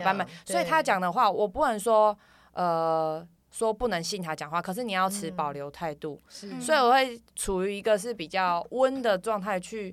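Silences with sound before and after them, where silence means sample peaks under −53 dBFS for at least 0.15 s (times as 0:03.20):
0:03.28–0:03.52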